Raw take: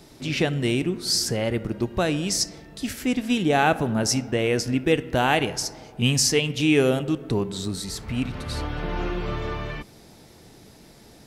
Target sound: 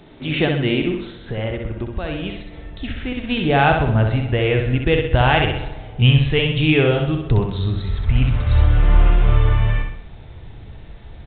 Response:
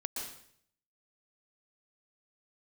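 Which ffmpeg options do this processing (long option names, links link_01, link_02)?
-filter_complex "[0:a]asubboost=boost=11:cutoff=74,asettb=1/sr,asplit=3[link_01][link_02][link_03];[link_01]atrim=end=1.054[link_04];[link_02]atrim=start=1.05:end=3.29,asetpts=PTS-STARTPTS,afade=type=in:duration=0.004:curve=qsin,afade=type=out:start_time=2.236:duration=0.004:curve=qsin,acompressor=threshold=-26dB:ratio=6[link_05];[link_03]atrim=start=3.286[link_06];[link_04][link_05]acrossfade=duration=0.004:curve1=hsin:curve2=qsin[link_07];[link_07][link_06]acrossfade=duration=0.004:curve1=qsin:curve2=hsin,aecho=1:1:64|128|192|256|320|384:0.562|0.27|0.13|0.0622|0.0299|0.0143,aresample=8000,aresample=44100,volume=4dB"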